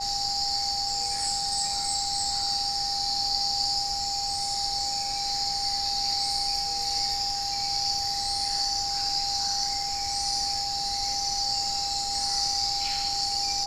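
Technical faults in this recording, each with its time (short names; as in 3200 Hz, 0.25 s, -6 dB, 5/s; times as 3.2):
tone 800 Hz -32 dBFS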